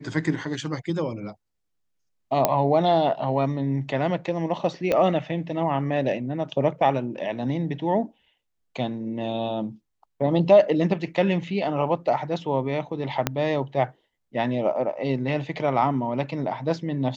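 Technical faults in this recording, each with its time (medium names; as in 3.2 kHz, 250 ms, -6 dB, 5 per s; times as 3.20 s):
2.45 s: pop -4 dBFS
4.92 s: pop -11 dBFS
13.27 s: pop -6 dBFS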